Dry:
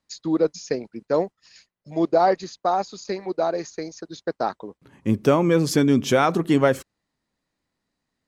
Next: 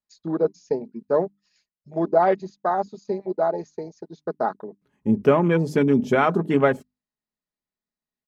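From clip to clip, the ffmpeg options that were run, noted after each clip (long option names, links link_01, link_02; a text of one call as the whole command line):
ffmpeg -i in.wav -af "bandreject=frequency=50:width_type=h:width=6,bandreject=frequency=100:width_type=h:width=6,bandreject=frequency=150:width_type=h:width=6,bandreject=frequency=200:width_type=h:width=6,bandreject=frequency=250:width_type=h:width=6,bandreject=frequency=300:width_type=h:width=6,afwtdn=0.0282,aecho=1:1:4.8:0.42" out.wav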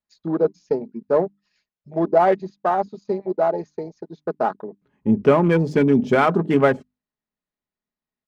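ffmpeg -i in.wav -filter_complex "[0:a]asplit=2[link_01][link_02];[link_02]asoftclip=type=tanh:threshold=-14dB,volume=-8dB[link_03];[link_01][link_03]amix=inputs=2:normalize=0,adynamicsmooth=sensitivity=6:basefreq=4100" out.wav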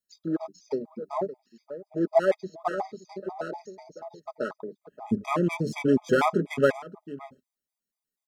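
ffmpeg -i in.wav -filter_complex "[0:a]bass=frequency=250:gain=-4,treble=frequency=4000:gain=12,asplit=2[link_01][link_02];[link_02]adelay=577.3,volume=-16dB,highshelf=frequency=4000:gain=-13[link_03];[link_01][link_03]amix=inputs=2:normalize=0,afftfilt=real='re*gt(sin(2*PI*4.1*pts/sr)*(1-2*mod(floor(b*sr/1024/640),2)),0)':imag='im*gt(sin(2*PI*4.1*pts/sr)*(1-2*mod(floor(b*sr/1024/640),2)),0)':win_size=1024:overlap=0.75,volume=-3dB" out.wav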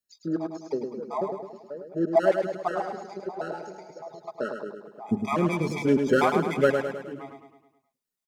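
ffmpeg -i in.wav -af "aecho=1:1:105|210|315|420|525|630:0.501|0.261|0.136|0.0705|0.0366|0.0191" out.wav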